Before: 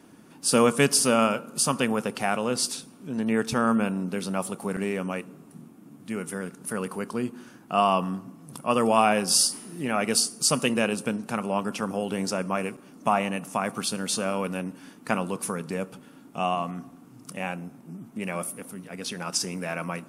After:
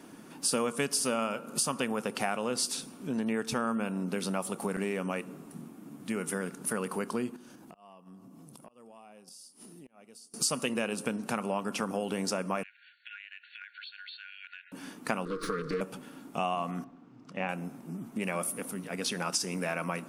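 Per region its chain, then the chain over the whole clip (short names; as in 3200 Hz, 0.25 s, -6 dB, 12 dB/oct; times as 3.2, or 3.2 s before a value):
7.36–10.34 bell 1700 Hz -7 dB 1.4 oct + flipped gate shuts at -19 dBFS, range -30 dB + compressor 12:1, threshold -49 dBFS
12.63–14.72 brick-wall FIR band-pass 1400–4500 Hz + compressor 8:1, threshold -45 dBFS
15.25–15.81 minimum comb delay 6.4 ms + EQ curve 150 Hz 0 dB, 470 Hz +9 dB, 750 Hz -29 dB, 1200 Hz +10 dB, 2800 Hz -6 dB, 4300 Hz +6 dB, 7100 Hz -11 dB, 14000 Hz -18 dB + compressor 2:1, threshold -32 dBFS
16.84–17.49 air absorption 180 m + upward expander, over -42 dBFS
whole clip: compressor 4:1, threshold -31 dBFS; bell 73 Hz -8.5 dB 1.7 oct; gain +3 dB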